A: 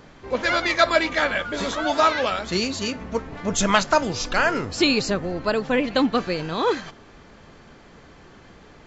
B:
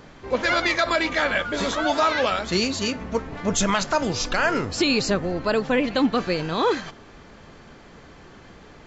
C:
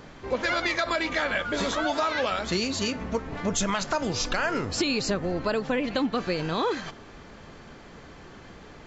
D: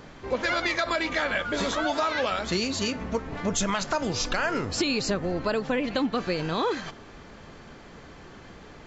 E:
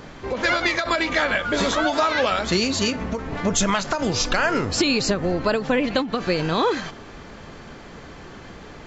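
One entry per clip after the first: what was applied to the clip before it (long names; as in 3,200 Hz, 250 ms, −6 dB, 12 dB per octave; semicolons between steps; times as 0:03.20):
brickwall limiter −12.5 dBFS, peak gain reduction 8 dB; level +1.5 dB
downward compressor 3 to 1, threshold −24 dBFS, peak gain reduction 7 dB
no processing that can be heard
every ending faded ahead of time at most 130 dB per second; level +6 dB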